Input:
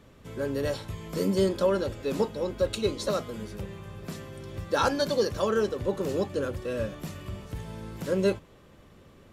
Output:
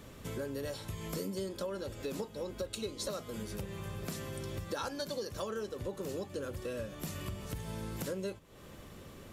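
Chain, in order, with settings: compressor 6:1, threshold -40 dBFS, peak gain reduction 19 dB; high shelf 5700 Hz +9.5 dB; gain +3 dB

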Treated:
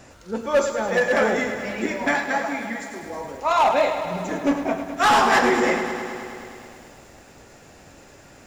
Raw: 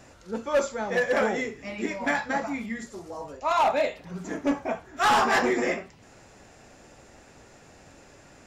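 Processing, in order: 2.14–3.03 HPF 310 Hz 6 dB/oct; lo-fi delay 0.105 s, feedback 80%, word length 9-bit, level -10 dB; gain +4 dB

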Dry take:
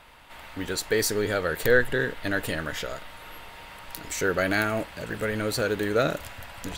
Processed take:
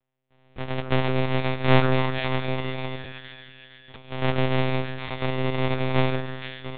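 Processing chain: sample sorter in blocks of 128 samples; de-hum 47.55 Hz, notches 35; expander -32 dBFS; split-band echo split 1800 Hz, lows 0.159 s, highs 0.465 s, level -7.5 dB; monotone LPC vocoder at 8 kHz 130 Hz; gain +3 dB

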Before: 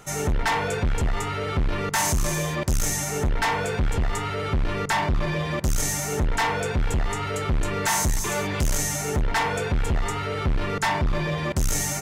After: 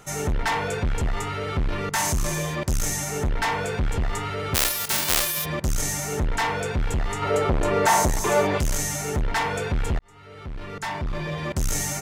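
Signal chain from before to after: 4.54–5.44 spectral whitening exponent 0.1; 7.22–8.58 bell 600 Hz +11 dB 2.1 oct; 9.99–11.71 fade in; gain -1 dB

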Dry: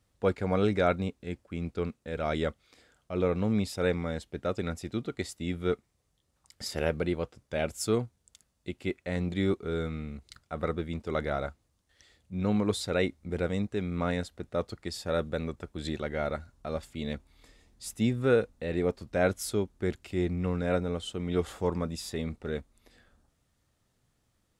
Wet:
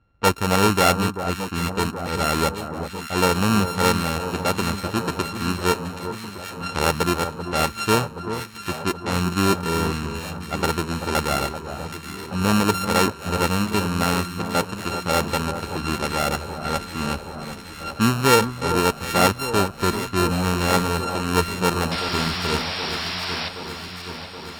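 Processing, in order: sample sorter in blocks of 32 samples; low-pass opened by the level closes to 2400 Hz, open at -27.5 dBFS; painted sound noise, 21.91–23.49, 600–5700 Hz -37 dBFS; on a send: echo with dull and thin repeats by turns 0.387 s, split 1400 Hz, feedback 83%, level -9 dB; on the sum: gain +8 dB

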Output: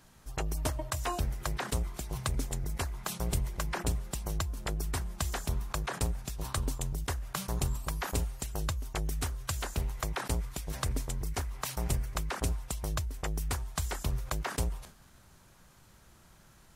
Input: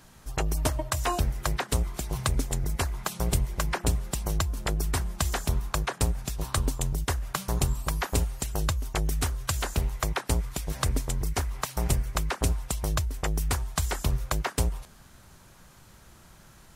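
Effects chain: sustainer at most 110 dB/s; gain -6 dB

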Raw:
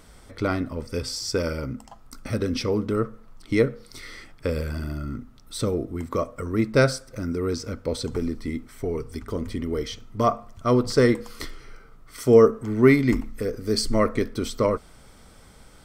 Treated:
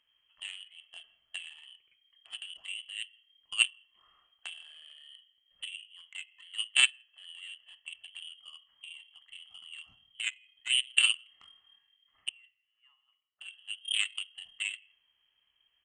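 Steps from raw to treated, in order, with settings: treble ducked by the level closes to 890 Hz, closed at -20.5 dBFS; 12.29–13.41 differentiator; inverted band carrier 3200 Hz; echo 0.164 s -18.5 dB; on a send at -11 dB: reverb RT60 0.70 s, pre-delay 12 ms; on the sum: added harmonics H 3 -10 dB, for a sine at -6 dBFS

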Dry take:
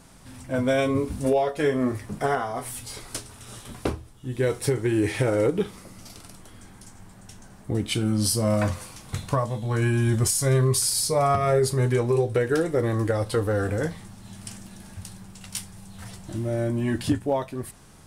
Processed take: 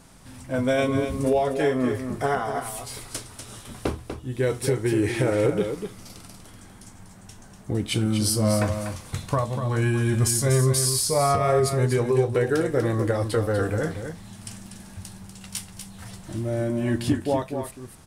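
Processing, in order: echo 0.243 s -8 dB

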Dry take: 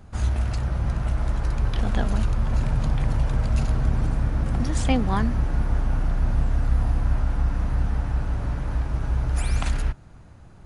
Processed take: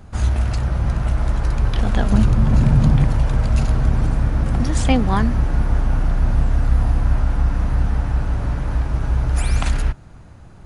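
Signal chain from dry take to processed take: 2.12–3.05 bell 180 Hz +9.5 dB 1.8 oct; gain +5 dB

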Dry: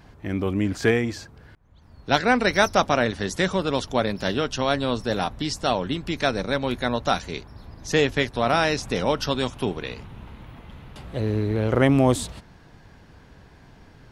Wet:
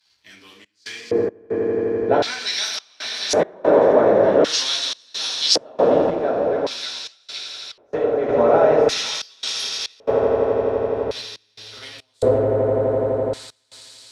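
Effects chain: reverb RT60 0.85 s, pre-delay 4 ms, DRR -5 dB; compressor, threshold -19 dBFS, peak gain reduction 11.5 dB; high shelf 8900 Hz +11 dB; swelling echo 84 ms, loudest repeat 8, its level -12 dB; sample leveller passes 1; bell 65 Hz +14.5 dB 0.25 oct; step gate "xxx.xx.xxx" 70 bpm -24 dB; 6.1–8.29 flange 1.9 Hz, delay 6.5 ms, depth 9.9 ms, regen +87%; LFO band-pass square 0.45 Hz 540–4500 Hz; three-band expander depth 40%; gain +7.5 dB

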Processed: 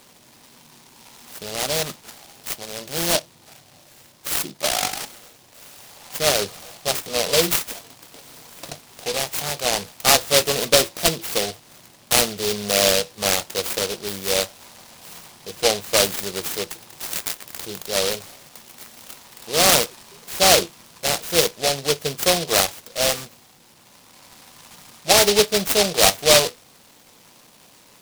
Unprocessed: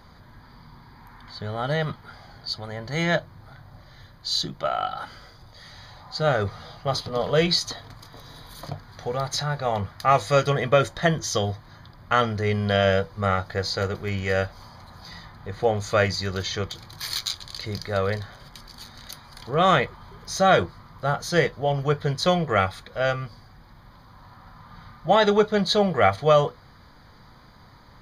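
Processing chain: BPF 290–5500 Hz; noise-modulated delay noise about 3900 Hz, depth 0.22 ms; gain +3.5 dB

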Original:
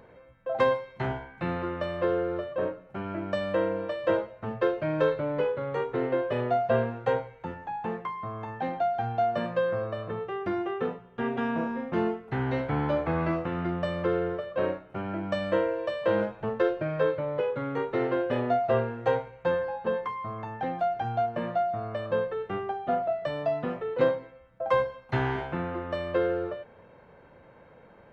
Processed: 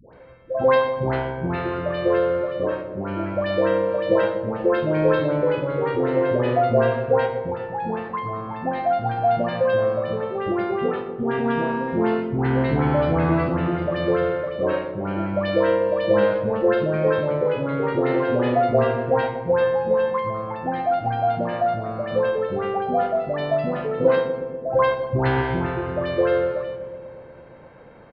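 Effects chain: short-mantissa float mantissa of 6-bit; dispersion highs, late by 0.138 s, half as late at 830 Hz; on a send: darkening echo 0.122 s, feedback 80%, low-pass 1000 Hz, level -8 dB; on the sum: downsampling 11025 Hz; gain +6 dB

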